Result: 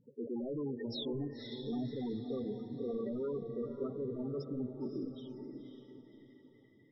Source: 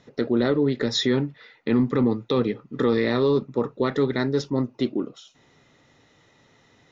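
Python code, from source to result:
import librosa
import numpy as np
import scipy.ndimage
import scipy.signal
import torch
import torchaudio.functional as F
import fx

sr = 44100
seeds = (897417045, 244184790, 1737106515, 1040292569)

y = np.clip(x, -10.0 ** (-27.5 / 20.0), 10.0 ** (-27.5 / 20.0))
y = fx.spec_topn(y, sr, count=8)
y = fx.echo_diffused(y, sr, ms=550, feedback_pct=40, wet_db=-6)
y = F.gain(torch.from_numpy(y), -7.5).numpy()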